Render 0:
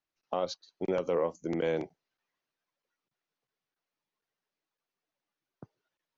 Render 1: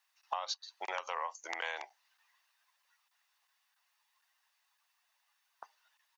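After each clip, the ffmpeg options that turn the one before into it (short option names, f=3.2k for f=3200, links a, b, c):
-af "highpass=f=890:w=0.5412,highpass=f=890:w=1.3066,aecho=1:1:1.1:0.33,acompressor=threshold=-49dB:ratio=4,volume=13.5dB"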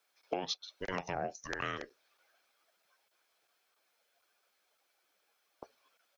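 -af "afreqshift=-370,volume=1dB"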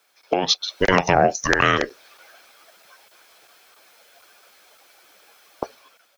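-filter_complex "[0:a]dynaudnorm=f=160:g=7:m=10dB,asplit=2[a][b];[b]alimiter=limit=-19.5dB:level=0:latency=1:release=329,volume=2dB[c];[a][c]amix=inputs=2:normalize=0,volume=6dB"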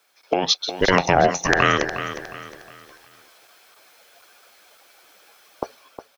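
-af "aecho=1:1:360|720|1080|1440:0.282|0.104|0.0386|0.0143"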